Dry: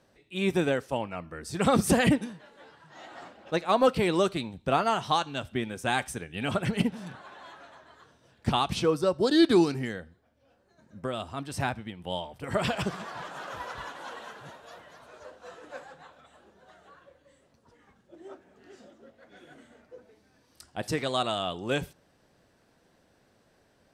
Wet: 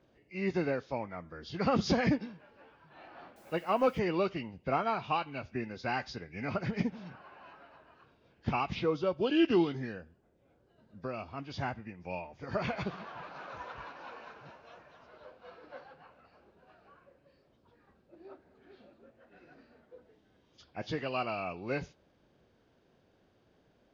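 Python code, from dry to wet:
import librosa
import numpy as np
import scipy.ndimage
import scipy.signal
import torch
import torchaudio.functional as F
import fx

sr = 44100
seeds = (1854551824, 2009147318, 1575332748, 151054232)

y = fx.freq_compress(x, sr, knee_hz=1500.0, ratio=1.5)
y = fx.quant_dither(y, sr, seeds[0], bits=10, dither='triangular', at=(3.36, 3.99))
y = fx.dmg_noise_band(y, sr, seeds[1], low_hz=41.0, high_hz=530.0, level_db=-66.0)
y = y * librosa.db_to_amplitude(-5.5)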